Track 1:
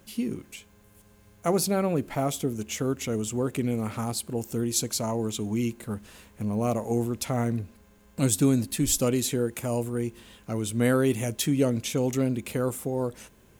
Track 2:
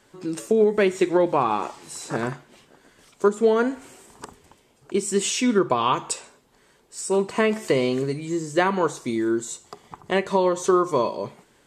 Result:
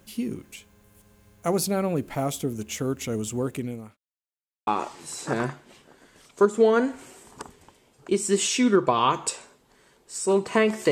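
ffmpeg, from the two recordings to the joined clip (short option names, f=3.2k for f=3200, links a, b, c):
-filter_complex "[0:a]apad=whole_dur=10.91,atrim=end=10.91,asplit=2[a][b];[a]atrim=end=3.97,asetpts=PTS-STARTPTS,afade=t=out:st=3.45:d=0.52[c];[b]atrim=start=3.97:end=4.67,asetpts=PTS-STARTPTS,volume=0[d];[1:a]atrim=start=1.5:end=7.74,asetpts=PTS-STARTPTS,afade=t=in:d=0.004:c=hsin[e];[c][d][e]concat=n=3:v=0:a=1"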